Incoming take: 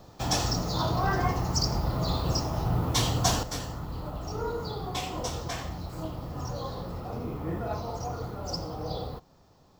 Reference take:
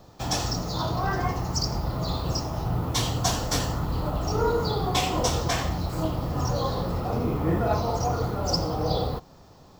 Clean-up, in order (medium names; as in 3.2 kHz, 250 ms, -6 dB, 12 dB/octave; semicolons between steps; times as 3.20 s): gain correction +8.5 dB, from 3.43 s